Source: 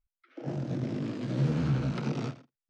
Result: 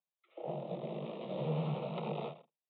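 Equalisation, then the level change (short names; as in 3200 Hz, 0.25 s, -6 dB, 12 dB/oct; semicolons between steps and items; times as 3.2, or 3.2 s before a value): rippled Chebyshev high-pass 150 Hz, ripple 3 dB; rippled Chebyshev low-pass 3800 Hz, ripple 3 dB; fixed phaser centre 650 Hz, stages 4; +5.0 dB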